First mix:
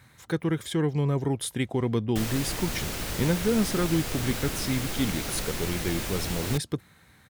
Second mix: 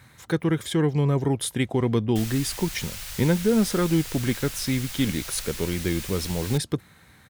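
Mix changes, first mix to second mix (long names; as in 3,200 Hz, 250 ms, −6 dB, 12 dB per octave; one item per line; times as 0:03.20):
speech +3.5 dB
background: add guitar amp tone stack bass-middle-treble 10-0-10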